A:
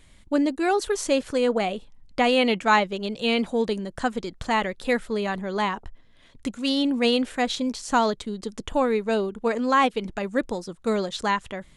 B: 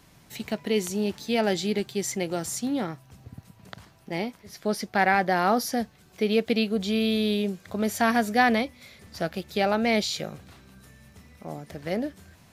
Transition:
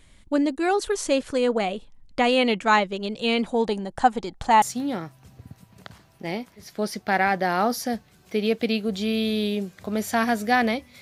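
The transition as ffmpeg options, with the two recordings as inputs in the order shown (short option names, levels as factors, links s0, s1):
-filter_complex "[0:a]asettb=1/sr,asplit=3[s0][s1][s2];[s0]atrim=end=3.544[s3];[s1]atrim=start=3.54:end=4.62,asetpts=PTS-STARTPTS,afade=t=in:d=0.004:c=qsin,afade=t=out:st=1.076:d=0.004:c=qsin,equalizer=f=810:w=4.6:g=14.5[s4];[s2]atrim=start=4.616[s5];[s3][s4]acrossfade=d=0.004:c1=hsin:c2=qsin[s6];[s6][s5]acrossfade=d=0.004:c1=qsin:c2=hsin,apad=whole_dur=11.01,atrim=end=11.01,atrim=end=4.622[s7];[1:a]atrim=start=2.488:end=8.88[s8];[s7][s8]acrossfade=d=0.004:c1=hsin:c2=hsin"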